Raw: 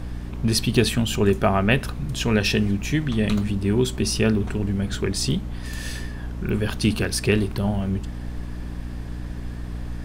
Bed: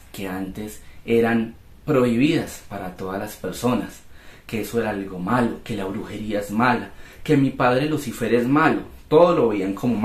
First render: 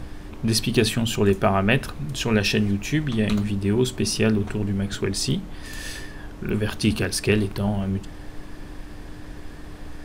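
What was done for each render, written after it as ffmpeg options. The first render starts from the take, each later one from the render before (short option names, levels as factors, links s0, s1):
-af "bandreject=f=60:t=h:w=6,bandreject=f=120:t=h:w=6,bandreject=f=180:t=h:w=6,bandreject=f=240:t=h:w=6"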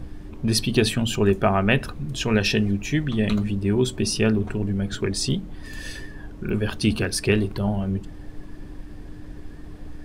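-af "afftdn=nr=8:nf=-39"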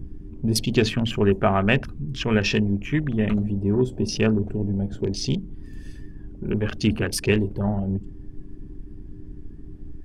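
-af "afwtdn=0.0224,equalizer=f=4000:w=5.2:g=-5"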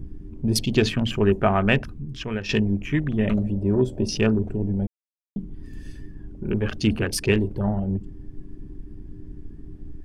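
-filter_complex "[0:a]asettb=1/sr,asplit=3[s0][s1][s2];[s0]atrim=end=3.254[s3];[s1]atrim=start=3.25:end=4.07,asetpts=PTS-STARTPTS,afade=t=in:d=0.004:c=qsin,afade=t=out:st=0.816:d=0.004:c=qsin,equalizer=f=580:w=4.8:g=9[s4];[s2]atrim=start=4.066[s5];[s3][s4]acrossfade=d=0.004:c1=hsin:c2=qsin[s6];[s6][s5]acrossfade=d=0.004:c1=qsin:c2=hsin,asplit=4[s7][s8][s9][s10];[s7]atrim=end=2.49,asetpts=PTS-STARTPTS,afade=t=out:st=1.74:d=0.75:silence=0.266073[s11];[s8]atrim=start=2.49:end=4.87,asetpts=PTS-STARTPTS,afade=t=in:d=0.004:c=hsin:silence=0.266073,afade=t=out:st=2.376:d=0.004:c=hsin[s12];[s9]atrim=start=4.87:end=5.36,asetpts=PTS-STARTPTS,volume=0[s13];[s10]atrim=start=5.36,asetpts=PTS-STARTPTS,afade=t=in:d=0.004:c=hsin[s14];[s11][s12][s13][s14]concat=n=4:v=0:a=1"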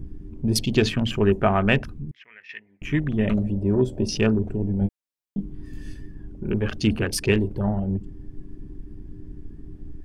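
-filter_complex "[0:a]asettb=1/sr,asplit=3[s0][s1][s2];[s0]atrim=end=2.114[s3];[s1]atrim=start=2.11:end=2.82,asetpts=PTS-STARTPTS,afade=t=in:d=0.004:c=qsin,afade=t=out:st=0.706:d=0.004:c=qsin,bandpass=f=2000:t=q:w=7.5[s4];[s2]atrim=start=2.816[s5];[s3][s4]acrossfade=d=0.004:c1=hsin:c2=qsin[s6];[s6][s5]acrossfade=d=0.004:c1=qsin:c2=hsin,asettb=1/sr,asplit=3[s7][s8][s9];[s7]atrim=end=4.794[s10];[s8]atrim=start=4.79:end=5.94,asetpts=PTS-STARTPTS,afade=t=in:d=0.004:c=qsin,afade=t=out:st=1.146:d=0.004:c=qsin,asplit=2[s11][s12];[s12]adelay=20,volume=0.668[s13];[s11][s13]amix=inputs=2:normalize=0,atrim=end_sample=50715[s14];[s9]atrim=start=5.936[s15];[s10][s14]acrossfade=d=0.004:c1=hsin:c2=qsin[s16];[s16][s15]acrossfade=d=0.004:c1=qsin:c2=hsin"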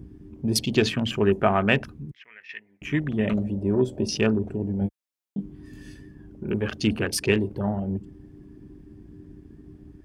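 -af "highpass=53,lowshelf=f=130:g=-7"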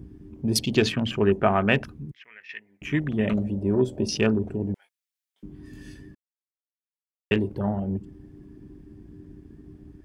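-filter_complex "[0:a]asettb=1/sr,asplit=3[s0][s1][s2];[s0]atrim=end=0.924[s3];[s1]atrim=start=0.92:end=1.74,asetpts=PTS-STARTPTS,afade=t=in:d=0.004:c=qsin,afade=t=out:st=0.816:d=0.004:c=qsin,highshelf=f=5800:g=-8.5[s4];[s2]atrim=start=1.736[s5];[s3][s4]acrossfade=d=0.004:c1=hsin:c2=qsin[s6];[s6][s5]acrossfade=d=0.004:c1=qsin:c2=hsin,asettb=1/sr,asplit=3[s7][s8][s9];[s7]atrim=end=4.744[s10];[s8]atrim=start=4.74:end=5.43,asetpts=PTS-STARTPTS,afade=t=in:d=0.004:c=qsin,afade=t=out:st=0.686:d=0.004:c=qsin,highpass=f=1500:w=0.5412,highpass=f=1500:w=1.3066[s11];[s9]atrim=start=5.426[s12];[s10][s11]acrossfade=d=0.004:c1=hsin:c2=qsin[s13];[s13][s12]acrossfade=d=0.004:c1=qsin:c2=hsin,asplit=3[s14][s15][s16];[s14]atrim=end=6.15,asetpts=PTS-STARTPTS,afade=t=out:st=6.146:d=0.004:c=hsin[s17];[s15]atrim=start=6.15:end=7.31,asetpts=PTS-STARTPTS,volume=0[s18];[s16]atrim=start=7.31,asetpts=PTS-STARTPTS,afade=t=in:d=0.004:c=hsin[s19];[s17][s18][s19]concat=n=3:v=0:a=1"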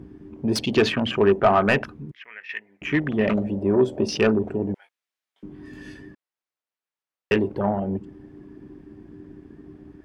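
-filter_complex "[0:a]asplit=2[s0][s1];[s1]highpass=f=720:p=1,volume=7.08,asoftclip=type=tanh:threshold=0.596[s2];[s0][s2]amix=inputs=2:normalize=0,lowpass=f=1400:p=1,volume=0.501"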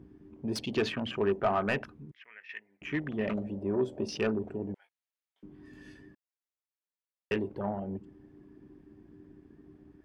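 -af "volume=0.299"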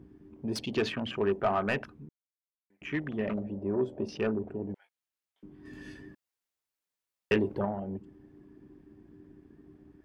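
-filter_complex "[0:a]asettb=1/sr,asplit=3[s0][s1][s2];[s0]atrim=end=3.214[s3];[s1]atrim=start=3.21:end=4.7,asetpts=PTS-STARTPTS,afade=t=in:d=0.004:c=qsin,afade=t=out:st=1.486:d=0.004:c=qsin,highshelf=f=3500:g=-11[s4];[s2]atrim=start=4.696[s5];[s3][s4]acrossfade=d=0.004:c1=hsin:c2=qsin[s6];[s6][s5]acrossfade=d=0.004:c1=qsin:c2=hsin,asettb=1/sr,asplit=3[s7][s8][s9];[s7]atrim=end=5.654[s10];[s8]atrim=start=5.65:end=7.65,asetpts=PTS-STARTPTS,afade=t=in:d=0.004:c=qsin,afade=t=out:st=1.996:d=0.004:c=qsin,acontrast=27[s11];[s9]atrim=start=7.646[s12];[s10][s11]acrossfade=d=0.004:c1=hsin:c2=qsin[s13];[s13][s12]acrossfade=d=0.004:c1=qsin:c2=hsin,asplit=3[s14][s15][s16];[s14]atrim=end=2.09,asetpts=PTS-STARTPTS,afade=t=out:st=2.086:d=0.004:c=hsin[s17];[s15]atrim=start=2.09:end=2.7,asetpts=PTS-STARTPTS,volume=0[s18];[s16]atrim=start=2.7,asetpts=PTS-STARTPTS,afade=t=in:d=0.004:c=hsin[s19];[s17][s18][s19]concat=n=3:v=0:a=1"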